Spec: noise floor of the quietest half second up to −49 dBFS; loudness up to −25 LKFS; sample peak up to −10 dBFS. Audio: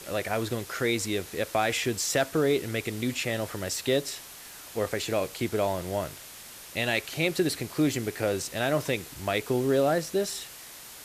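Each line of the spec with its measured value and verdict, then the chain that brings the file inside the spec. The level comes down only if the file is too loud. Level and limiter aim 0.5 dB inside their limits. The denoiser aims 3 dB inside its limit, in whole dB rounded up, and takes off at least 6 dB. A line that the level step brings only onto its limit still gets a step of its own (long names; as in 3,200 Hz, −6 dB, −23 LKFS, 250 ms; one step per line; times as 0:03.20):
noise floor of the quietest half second −45 dBFS: out of spec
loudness −28.5 LKFS: in spec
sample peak −13.5 dBFS: in spec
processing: broadband denoise 7 dB, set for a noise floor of −45 dBFS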